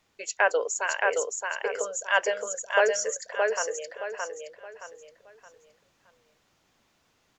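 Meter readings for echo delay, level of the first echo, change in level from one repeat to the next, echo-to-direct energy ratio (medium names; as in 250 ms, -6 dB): 620 ms, -3.0 dB, -9.5 dB, -2.5 dB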